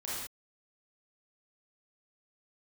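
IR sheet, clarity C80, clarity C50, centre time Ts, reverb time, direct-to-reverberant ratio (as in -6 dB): 1.0 dB, -3.0 dB, 82 ms, not exponential, -8.5 dB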